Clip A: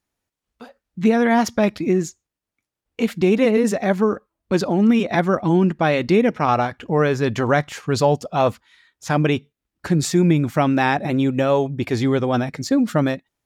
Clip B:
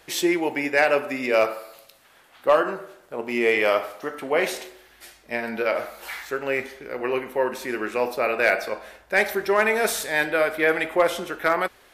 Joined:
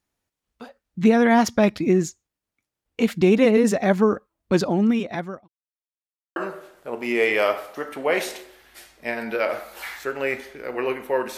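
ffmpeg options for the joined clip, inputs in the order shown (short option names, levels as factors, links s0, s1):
-filter_complex "[0:a]apad=whole_dur=11.37,atrim=end=11.37,asplit=2[s0][s1];[s0]atrim=end=5.48,asetpts=PTS-STARTPTS,afade=t=out:st=4.52:d=0.96[s2];[s1]atrim=start=5.48:end=6.36,asetpts=PTS-STARTPTS,volume=0[s3];[1:a]atrim=start=2.62:end=7.63,asetpts=PTS-STARTPTS,afade=t=in:d=0.004:c=hsin[s4];[s2][s3][s4]concat=n=3:v=0:a=1"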